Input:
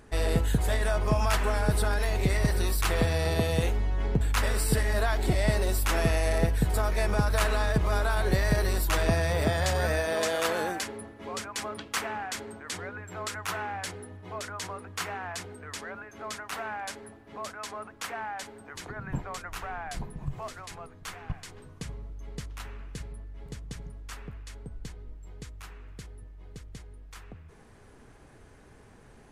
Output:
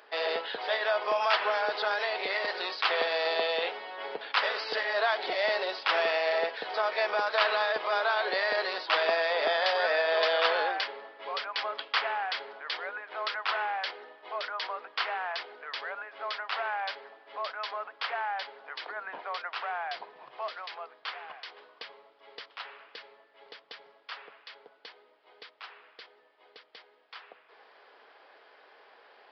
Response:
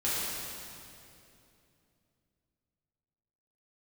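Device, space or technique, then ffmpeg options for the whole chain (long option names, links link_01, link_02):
musical greeting card: -af "aresample=11025,aresample=44100,highpass=frequency=520:width=0.5412,highpass=frequency=520:width=1.3066,equalizer=frequency=3200:width_type=o:width=0.29:gain=4,volume=3.5dB"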